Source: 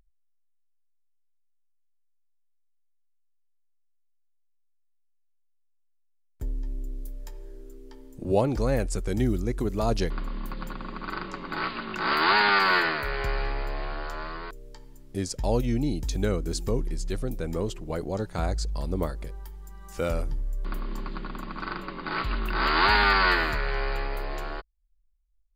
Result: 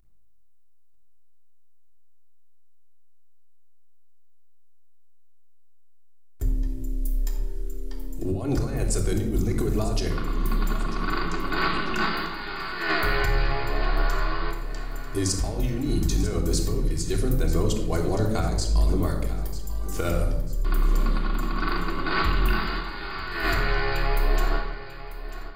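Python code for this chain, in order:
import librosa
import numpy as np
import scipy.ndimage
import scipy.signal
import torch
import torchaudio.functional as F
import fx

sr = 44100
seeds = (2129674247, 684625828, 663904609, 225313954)

p1 = fx.high_shelf(x, sr, hz=5700.0, db=8.5)
p2 = fx.over_compress(p1, sr, threshold_db=-27.0, ratio=-0.5)
p3 = 10.0 ** (-11.5 / 20.0) * np.tanh(p2 / 10.0 ** (-11.5 / 20.0))
p4 = p3 + fx.echo_feedback(p3, sr, ms=943, feedback_pct=41, wet_db=-14.0, dry=0)
p5 = fx.room_shoebox(p4, sr, seeds[0], volume_m3=2900.0, walls='furnished', distance_m=3.3)
y = fx.end_taper(p5, sr, db_per_s=120.0)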